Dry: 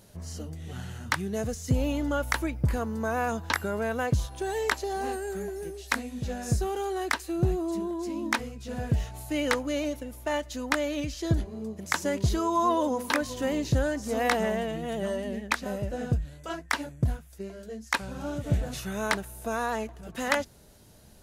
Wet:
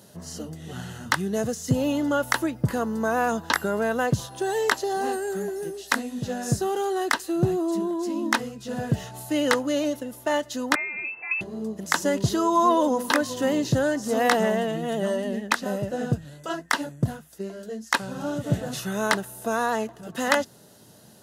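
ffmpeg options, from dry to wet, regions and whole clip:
-filter_complex "[0:a]asettb=1/sr,asplit=3[a][b][c];[a]atrim=end=10.754[d];[b]atrim=start=10.75:end=11.41,asetpts=PTS-STARTPTS,afade=t=in:d=0.004:c=qsin,afade=t=out:st=0.656:d=0.004:c=qsin,lowpass=f=2.3k:t=q:w=0.5098,lowpass=f=2.3k:t=q:w=0.6013,lowpass=f=2.3k:t=q:w=0.9,lowpass=f=2.3k:t=q:w=2.563,afreqshift=-2700,acrossover=split=730|2000[e][f][g];[e]acompressor=threshold=-51dB:ratio=4[h];[f]acompressor=threshold=-40dB:ratio=4[i];[g]acompressor=threshold=-29dB:ratio=4[j];[h][i][j]amix=inputs=3:normalize=0[k];[c]atrim=start=11.406[l];[d][k]acrossfade=d=0.004:c1=hsin:c2=qsin[m];[m][l]acrossfade=d=0.004:c1=qsin:c2=hsin,highpass=f=120:w=0.5412,highpass=f=120:w=1.3066,bandreject=f=2.3k:w=5.4,volume=5dB"

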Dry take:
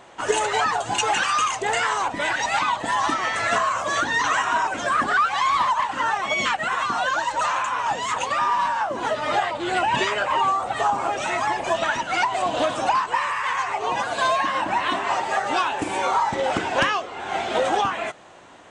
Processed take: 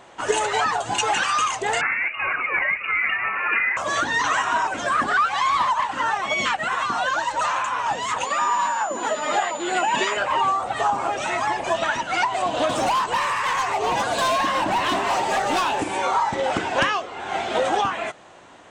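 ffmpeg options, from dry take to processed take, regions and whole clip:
-filter_complex "[0:a]asettb=1/sr,asplit=3[a][b][c];[a]atrim=end=1.814[d];[b]atrim=start=1.81:end=3.77,asetpts=PTS-STARTPTS,afade=t=in:d=0.004:c=qsin,afade=t=out:st=1.956:d=0.004:c=qsin,highpass=320,lowpass=f=2.6k:t=q:w=0.5098,lowpass=f=2.6k:t=q:w=0.6013,lowpass=f=2.6k:t=q:w=0.9,lowpass=f=2.6k:t=q:w=2.563,afreqshift=-3100[e];[c]atrim=start=3.766[f];[d][e]acrossfade=d=0.004:c1=hsin:c2=qsin[g];[g][f]acrossfade=d=0.004:c1=qsin:c2=hsin,asettb=1/sr,asplit=3[h][i][j];[h]atrim=end=8.254[k];[i]atrim=start=8.25:end=10.17,asetpts=PTS-STARTPTS,afade=t=in:d=0.004:c=qsin,afade=t=out:st=1.916:d=0.004:c=qsin,highpass=f=180:w=0.5412,highpass=f=180:w=1.3066,aeval=exprs='val(0)+0.0141*sin(2*PI*7000*n/s)':c=same[l];[j]atrim=start=10.166[m];[k][l]acrossfade=d=0.004:c1=hsin:c2=qsin[n];[n][m]acrossfade=d=0.004:c1=qsin:c2=hsin,asettb=1/sr,asplit=3[o][p][q];[o]atrim=end=12.694[r];[p]atrim=start=12.69:end=15.82,asetpts=PTS-STARTPTS,afade=t=in:d=0.004:c=qsin,afade=t=out:st=3.126:d=0.004:c=qsin,acontrast=68,equalizer=f=1.6k:t=o:w=1.8:g=-5.5,volume=18dB,asoftclip=hard,volume=-18dB[s];[q]atrim=start=15.816[t];[r][s]acrossfade=d=0.004:c1=hsin:c2=qsin[u];[u][t]acrossfade=d=0.004:c1=qsin:c2=hsin"

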